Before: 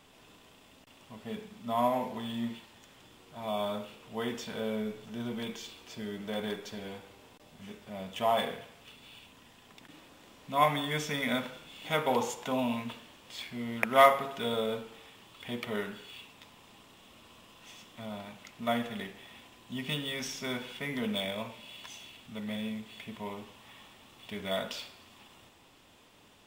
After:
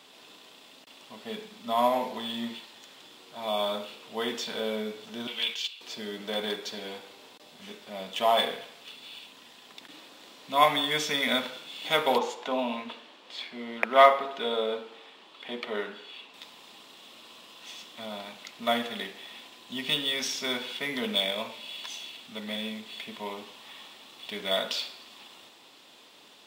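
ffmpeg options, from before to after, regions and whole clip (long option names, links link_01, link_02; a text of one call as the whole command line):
ffmpeg -i in.wav -filter_complex "[0:a]asettb=1/sr,asplit=3[link_01][link_02][link_03];[link_01]atrim=end=5.274[link_04];[link_02]atrim=start=5.27:end=5.81,asetpts=PTS-STARTPTS,afade=type=in:duration=0.004:curve=qsin,afade=type=out:start_time=0.536:duration=0.004:curve=qsin,agate=range=-10dB:threshold=-45dB:ratio=16:release=100:detection=peak,highpass=frequency=1200:poles=1,equalizer=frequency=2800:width_type=o:width=0.64:gain=13[link_05];[link_03]atrim=start=5.806[link_06];[link_04][link_05]acrossfade=duration=0.004:curve1=hsin:curve2=qsin[link_07];[link_07][link_06]acrossfade=duration=0.004:curve1=qsin:curve2=hsin,asettb=1/sr,asplit=3[link_08][link_09][link_10];[link_08]atrim=end=12.184[link_11];[link_09]atrim=start=12.18:end=16.34,asetpts=PTS-STARTPTS,afade=type=in:duration=0.004:curve=qsin,afade=type=out:start_time=4.156:duration=0.004:curve=qsin,highpass=220,aemphasis=mode=reproduction:type=75kf[link_12];[link_10]atrim=start=16.336[link_13];[link_11][link_12]acrossfade=duration=0.004:curve1=hsin:curve2=qsin[link_14];[link_14][link_13]acrossfade=duration=0.004:curve1=qsin:curve2=hsin,highpass=270,equalizer=frequency=4100:width_type=o:width=0.7:gain=8.5,volume=4dB" out.wav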